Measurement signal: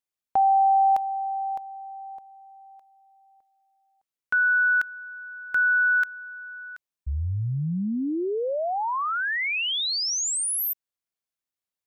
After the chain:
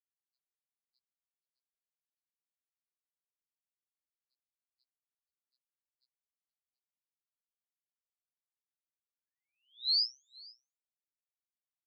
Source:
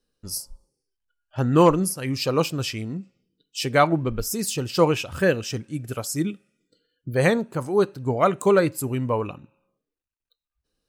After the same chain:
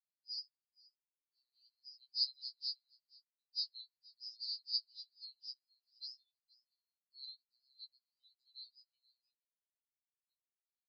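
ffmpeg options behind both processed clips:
ffmpeg -i in.wav -af "afftdn=noise_reduction=18:noise_floor=-38,alimiter=limit=-10dB:level=0:latency=1:release=471,asuperpass=centerf=4500:order=8:qfactor=4.8,aecho=1:1:476:0.0668,afftfilt=real='re*2.45*eq(mod(b,6),0)':imag='im*2.45*eq(mod(b,6),0)':win_size=2048:overlap=0.75,volume=1.5dB" out.wav

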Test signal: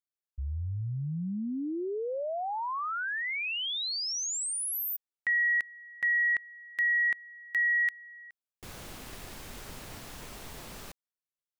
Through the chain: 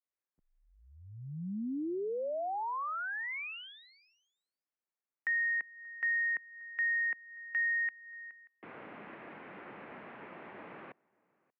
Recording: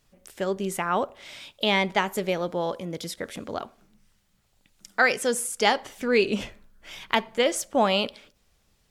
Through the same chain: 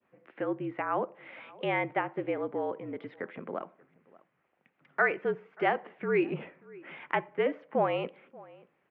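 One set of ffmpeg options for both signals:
ffmpeg -i in.wav -filter_complex "[0:a]adynamicequalizer=threshold=0.0126:dfrequency=1800:dqfactor=0.79:tfrequency=1800:tqfactor=0.79:attack=5:release=100:ratio=0.375:range=2.5:mode=cutabove:tftype=bell,asplit=2[link_01][link_02];[link_02]adelay=583.1,volume=-27dB,highshelf=frequency=4000:gain=-13.1[link_03];[link_01][link_03]amix=inputs=2:normalize=0,highpass=frequency=250:width_type=q:width=0.5412,highpass=frequency=250:width_type=q:width=1.307,lowpass=frequency=2400:width_type=q:width=0.5176,lowpass=frequency=2400:width_type=q:width=0.7071,lowpass=frequency=2400:width_type=q:width=1.932,afreqshift=-51,asplit=2[link_04][link_05];[link_05]acompressor=threshold=-39dB:ratio=6:attack=0.9:release=294:knee=6:detection=rms,volume=1dB[link_06];[link_04][link_06]amix=inputs=2:normalize=0,volume=-5.5dB" out.wav

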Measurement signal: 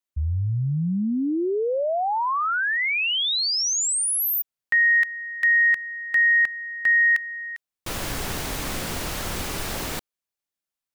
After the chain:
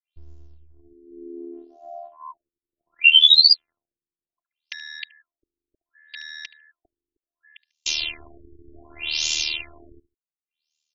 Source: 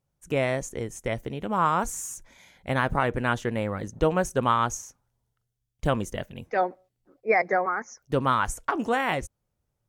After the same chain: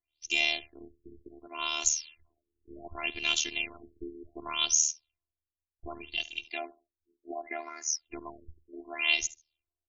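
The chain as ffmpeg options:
ffmpeg -i in.wav -filter_complex "[0:a]equalizer=frequency=2700:width_type=o:width=0.46:gain=7,acrossover=split=450|3500[link_01][link_02][link_03];[link_03]alimiter=level_in=3.5dB:limit=-24dB:level=0:latency=1,volume=-3.5dB[link_04];[link_01][link_02][link_04]amix=inputs=3:normalize=0,aexciter=amount=15.3:drive=9.4:freq=2600,asplit=2[link_05][link_06];[link_06]aecho=0:1:73|146:0.106|0.0254[link_07];[link_05][link_07]amix=inputs=2:normalize=0,afftfilt=real='hypot(re,im)*cos(PI*b)':imag='0':win_size=512:overlap=0.75,tremolo=f=77:d=0.788,afftfilt=real='re*lt(b*sr/1024,430*pow(7400/430,0.5+0.5*sin(2*PI*0.67*pts/sr)))':imag='im*lt(b*sr/1024,430*pow(7400/430,0.5+0.5*sin(2*PI*0.67*pts/sr)))':win_size=1024:overlap=0.75,volume=-8.5dB" out.wav

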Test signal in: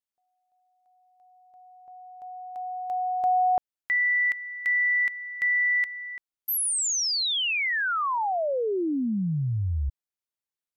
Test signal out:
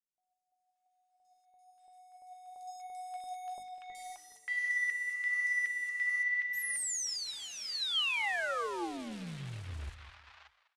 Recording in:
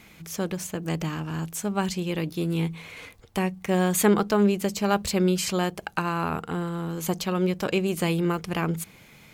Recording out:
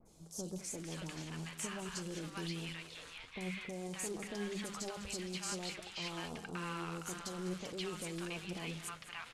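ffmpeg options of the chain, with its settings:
ffmpeg -i in.wav -filter_complex "[0:a]alimiter=limit=-19dB:level=0:latency=1:release=42,bandreject=frequency=50:width_type=h:width=6,bandreject=frequency=100:width_type=h:width=6,bandreject=frequency=150:width_type=h:width=6,bandreject=frequency=200:width_type=h:width=6,bandreject=frequency=250:width_type=h:width=6,bandreject=frequency=300:width_type=h:width=6,acompressor=threshold=-29dB:ratio=8:attack=0.61:release=23:knee=6:detection=rms,asplit=2[link_01][link_02];[link_02]aecho=0:1:202|404|606:0.2|0.0638|0.0204[link_03];[link_01][link_03]amix=inputs=2:normalize=0,acrusher=bits=3:mode=log:mix=0:aa=0.000001,adynamicequalizer=threshold=0.00562:dfrequency=3400:dqfactor=0.93:tfrequency=3400:tqfactor=0.93:attack=5:release=100:ratio=0.375:range=2:mode=boostabove:tftype=bell,lowpass=frequency=10000:width=0.5412,lowpass=frequency=10000:width=1.3066,flanger=delay=1.5:depth=4.1:regen=68:speed=1:shape=triangular,equalizer=frequency=160:width=0.3:gain=-5.5,acrossover=split=860|4700[link_04][link_05][link_06];[link_06]adelay=50[link_07];[link_05]adelay=580[link_08];[link_04][link_08][link_07]amix=inputs=3:normalize=0" out.wav

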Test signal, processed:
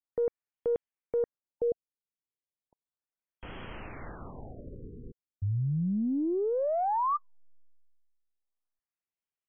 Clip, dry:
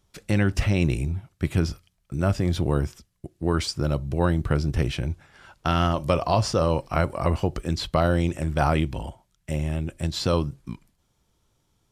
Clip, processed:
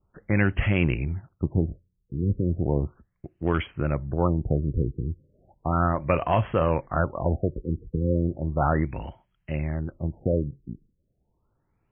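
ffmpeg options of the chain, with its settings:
ffmpeg -i in.wav -filter_complex "[0:a]adynamicequalizer=threshold=0.00631:dfrequency=2000:dqfactor=1.5:tfrequency=2000:tqfactor=1.5:attack=5:release=100:ratio=0.375:range=3:mode=boostabove:tftype=bell,acrossover=split=4000[link_01][link_02];[link_02]acompressor=threshold=-40dB:ratio=10[link_03];[link_01][link_03]amix=inputs=2:normalize=0,volume=12.5dB,asoftclip=hard,volume=-12.5dB,aeval=exprs='0.251*(cos(1*acos(clip(val(0)/0.251,-1,1)))-cos(1*PI/2))+0.02*(cos(3*acos(clip(val(0)/0.251,-1,1)))-cos(3*PI/2))+0.002*(cos(6*acos(clip(val(0)/0.251,-1,1)))-cos(6*PI/2))':channel_layout=same,afftfilt=real='re*lt(b*sr/1024,490*pow(3400/490,0.5+0.5*sin(2*PI*0.35*pts/sr)))':imag='im*lt(b*sr/1024,490*pow(3400/490,0.5+0.5*sin(2*PI*0.35*pts/sr)))':win_size=1024:overlap=0.75" out.wav

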